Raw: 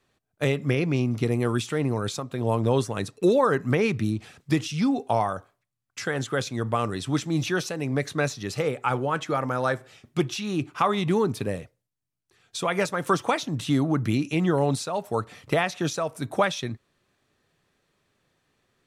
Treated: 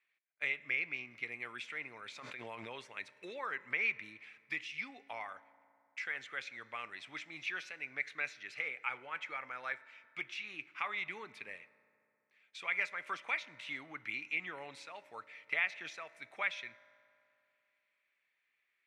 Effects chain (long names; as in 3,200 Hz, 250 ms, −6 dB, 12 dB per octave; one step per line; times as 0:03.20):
resonant band-pass 2,200 Hz, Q 6.3
convolution reverb RT60 2.6 s, pre-delay 3 ms, DRR 17 dB
0:02.16–0:02.78: background raised ahead of every attack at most 21 dB per second
level +2.5 dB